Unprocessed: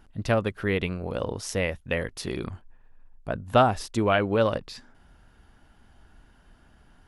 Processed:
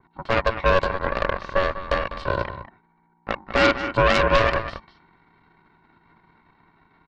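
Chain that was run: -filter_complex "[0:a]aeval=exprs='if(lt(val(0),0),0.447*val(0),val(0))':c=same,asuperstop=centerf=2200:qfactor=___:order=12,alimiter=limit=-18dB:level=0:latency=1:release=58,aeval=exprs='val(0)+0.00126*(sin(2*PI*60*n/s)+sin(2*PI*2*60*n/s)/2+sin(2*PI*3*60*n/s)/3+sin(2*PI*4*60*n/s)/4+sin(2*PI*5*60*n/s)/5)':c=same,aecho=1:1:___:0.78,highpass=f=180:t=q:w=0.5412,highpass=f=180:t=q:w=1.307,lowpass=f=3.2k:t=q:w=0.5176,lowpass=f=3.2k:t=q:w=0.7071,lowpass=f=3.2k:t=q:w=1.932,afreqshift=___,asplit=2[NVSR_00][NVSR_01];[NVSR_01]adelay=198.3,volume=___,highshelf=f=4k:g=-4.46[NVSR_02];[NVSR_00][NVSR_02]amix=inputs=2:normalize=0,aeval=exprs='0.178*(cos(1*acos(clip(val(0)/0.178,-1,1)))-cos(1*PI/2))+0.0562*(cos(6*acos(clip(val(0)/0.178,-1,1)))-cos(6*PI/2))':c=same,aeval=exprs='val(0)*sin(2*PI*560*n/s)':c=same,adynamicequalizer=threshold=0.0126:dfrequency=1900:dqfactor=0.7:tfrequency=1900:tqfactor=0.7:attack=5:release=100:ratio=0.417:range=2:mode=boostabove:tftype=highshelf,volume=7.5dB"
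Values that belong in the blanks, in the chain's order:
1.5, 2.5, 93, -9dB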